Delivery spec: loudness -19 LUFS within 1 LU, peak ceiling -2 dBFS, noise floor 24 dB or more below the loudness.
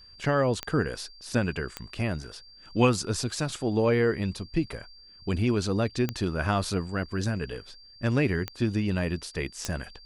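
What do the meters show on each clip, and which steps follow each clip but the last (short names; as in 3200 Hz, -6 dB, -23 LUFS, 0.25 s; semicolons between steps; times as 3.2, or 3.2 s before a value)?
clicks 5; steady tone 4700 Hz; tone level -50 dBFS; loudness -28.5 LUFS; peak -9.5 dBFS; loudness target -19.0 LUFS
-> de-click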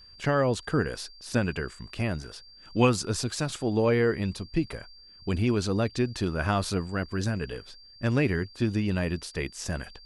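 clicks 0; steady tone 4700 Hz; tone level -50 dBFS
-> notch 4700 Hz, Q 30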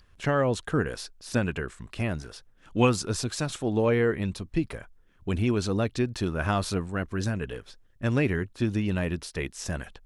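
steady tone none; loudness -28.5 LUFS; peak -9.5 dBFS; loudness target -19.0 LUFS
-> gain +9.5 dB; limiter -2 dBFS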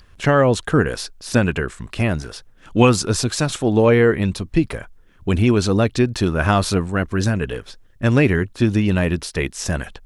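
loudness -19.0 LUFS; peak -2.0 dBFS; noise floor -49 dBFS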